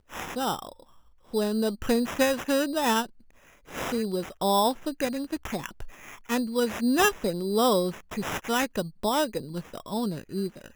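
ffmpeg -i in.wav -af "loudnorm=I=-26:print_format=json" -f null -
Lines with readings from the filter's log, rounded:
"input_i" : "-28.1",
"input_tp" : "-8.4",
"input_lra" : "3.8",
"input_thresh" : "-38.5",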